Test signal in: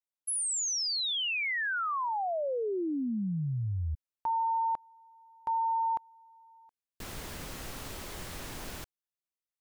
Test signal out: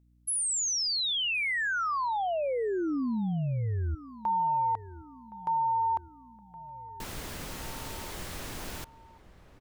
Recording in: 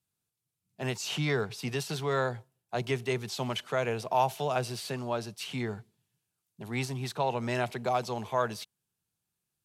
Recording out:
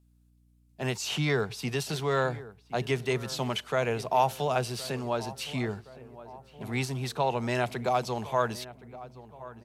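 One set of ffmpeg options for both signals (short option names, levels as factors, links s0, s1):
-filter_complex "[0:a]aeval=exprs='val(0)+0.000631*(sin(2*PI*60*n/s)+sin(2*PI*2*60*n/s)/2+sin(2*PI*3*60*n/s)/3+sin(2*PI*4*60*n/s)/4+sin(2*PI*5*60*n/s)/5)':c=same,asplit=2[s0][s1];[s1]adelay=1068,lowpass=f=1600:p=1,volume=0.15,asplit=2[s2][s3];[s3]adelay=1068,lowpass=f=1600:p=1,volume=0.55,asplit=2[s4][s5];[s5]adelay=1068,lowpass=f=1600:p=1,volume=0.55,asplit=2[s6][s7];[s7]adelay=1068,lowpass=f=1600:p=1,volume=0.55,asplit=2[s8][s9];[s9]adelay=1068,lowpass=f=1600:p=1,volume=0.55[s10];[s2][s4][s6][s8][s10]amix=inputs=5:normalize=0[s11];[s0][s11]amix=inputs=2:normalize=0,volume=1.26"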